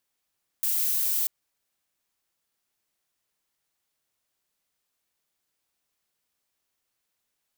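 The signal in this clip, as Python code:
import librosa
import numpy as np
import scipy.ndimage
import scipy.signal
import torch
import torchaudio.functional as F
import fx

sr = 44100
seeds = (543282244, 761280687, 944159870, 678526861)

y = fx.noise_colour(sr, seeds[0], length_s=0.64, colour='violet', level_db=-25.5)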